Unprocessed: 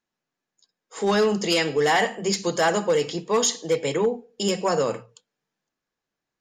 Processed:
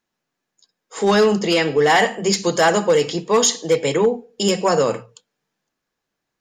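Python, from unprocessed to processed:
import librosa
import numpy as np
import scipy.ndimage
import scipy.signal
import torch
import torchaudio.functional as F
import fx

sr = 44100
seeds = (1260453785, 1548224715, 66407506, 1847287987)

y = fx.high_shelf(x, sr, hz=4700.0, db=-10.5, at=(1.39, 1.9))
y = y * 10.0 ** (5.5 / 20.0)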